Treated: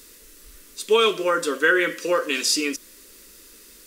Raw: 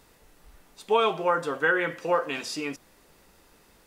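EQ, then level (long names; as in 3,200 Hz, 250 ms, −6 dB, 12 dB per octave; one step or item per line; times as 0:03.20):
bass and treble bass −3 dB, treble +9 dB
phaser with its sweep stopped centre 320 Hz, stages 4
+8.0 dB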